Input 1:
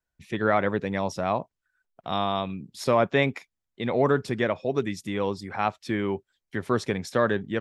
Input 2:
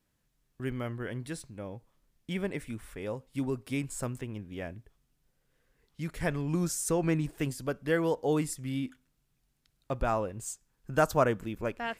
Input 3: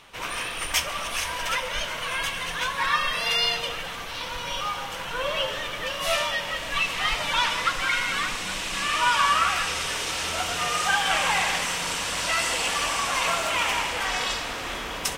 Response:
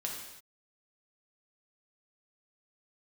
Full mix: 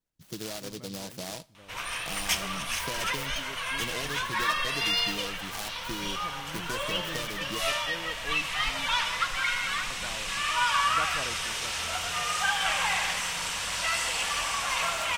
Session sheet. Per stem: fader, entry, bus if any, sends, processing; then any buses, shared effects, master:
−5.5 dB, 0.00 s, send −23.5 dB, comb filter 6.3 ms, depth 44%; downward compressor 10 to 1, threshold −29 dBFS, peak gain reduction 13.5 dB; short delay modulated by noise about 4,200 Hz, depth 0.21 ms
−15.0 dB, 0.00 s, no send, no processing
−3.0 dB, 1.55 s, no send, parametric band 330 Hz −8.5 dB 1.7 octaves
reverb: on, pre-delay 3 ms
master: no processing

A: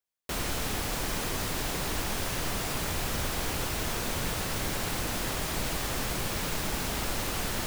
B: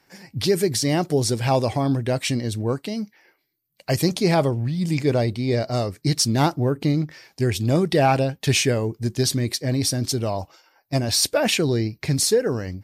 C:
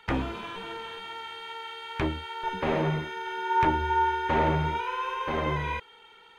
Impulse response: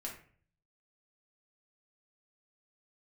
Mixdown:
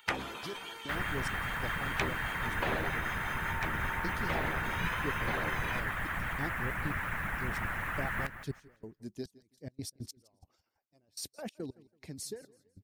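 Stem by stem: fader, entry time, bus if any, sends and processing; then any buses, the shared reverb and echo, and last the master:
+1.0 dB, 0.60 s, no send, echo send −12 dB, drawn EQ curve 170 Hz 0 dB, 380 Hz −13 dB, 1,800 Hz +10 dB, 4,700 Hz −27 dB, 11,000 Hz −18 dB
−18.5 dB, 0.00 s, no send, echo send −19.5 dB, gate pattern "x.x.x...xxxx..." 141 BPM −24 dB; tilt shelving filter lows +4.5 dB, about 650 Hz
+2.5 dB, 0.00 s, no send, no echo send, spectral tilt +2.5 dB per octave; downward compressor, threshold −29 dBFS, peak gain reduction 9 dB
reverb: not used
echo: repeating echo 165 ms, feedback 32%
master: harmonic and percussive parts rebalanced harmonic −15 dB; high-shelf EQ 7,000 Hz +6 dB

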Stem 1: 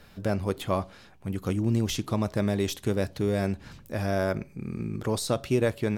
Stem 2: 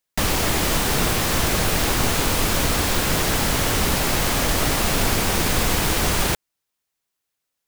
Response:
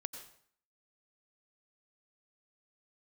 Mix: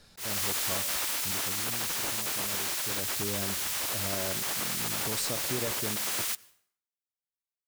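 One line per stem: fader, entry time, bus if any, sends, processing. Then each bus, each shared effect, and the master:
0:01.28 −9.5 dB → 0:01.67 −19.5 dB → 0:02.77 −19.5 dB → 0:03.15 −9 dB, 0.00 s, send −5 dB, flat-topped bell 6,200 Hz +10 dB
−2.5 dB, 0.00 s, send −19 dB, gate on every frequency bin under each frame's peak −15 dB weak; high-shelf EQ 5,900 Hz +5.5 dB; automatic ducking −6 dB, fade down 1.75 s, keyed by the first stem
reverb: on, RT60 0.60 s, pre-delay 82 ms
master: volume swells 292 ms; downward compressor 2 to 1, threshold −31 dBFS, peak gain reduction 5.5 dB

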